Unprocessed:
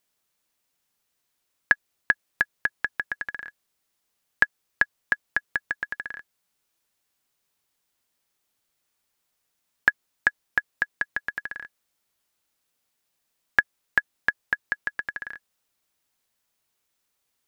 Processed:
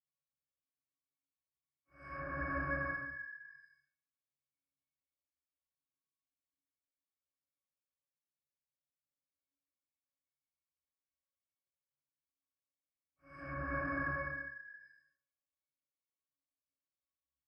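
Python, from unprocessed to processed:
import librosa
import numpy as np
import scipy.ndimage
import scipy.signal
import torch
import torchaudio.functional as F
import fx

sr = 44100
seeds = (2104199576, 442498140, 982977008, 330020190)

y = fx.leveller(x, sr, passes=5)
y = fx.paulstretch(y, sr, seeds[0], factor=29.0, window_s=0.05, from_s=9.79)
y = fx.env_lowpass_down(y, sr, base_hz=1700.0, full_db=-15.0)
y = fx.octave_resonator(y, sr, note='C#', decay_s=0.31)
y = y * 10.0 ** (3.5 / 20.0)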